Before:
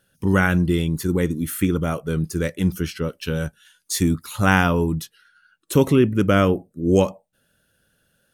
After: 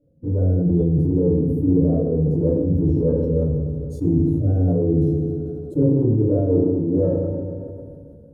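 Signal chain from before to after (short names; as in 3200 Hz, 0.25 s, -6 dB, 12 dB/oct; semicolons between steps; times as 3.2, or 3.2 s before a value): bin magnitudes rounded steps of 15 dB; elliptic low-pass 590 Hz, stop band 40 dB; dynamic EQ 240 Hz, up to -7 dB, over -33 dBFS, Q 1.3; reverse; compressor 5:1, threshold -31 dBFS, peak gain reduction 14.5 dB; reverse; transient shaper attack +2 dB, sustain -2 dB; multi-head echo 89 ms, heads second and third, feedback 49%, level -19 dB; FDN reverb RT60 0.87 s, low-frequency decay 1.4×, high-frequency decay 0.8×, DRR -9.5 dB; sustainer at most 23 dB/s; gain +2 dB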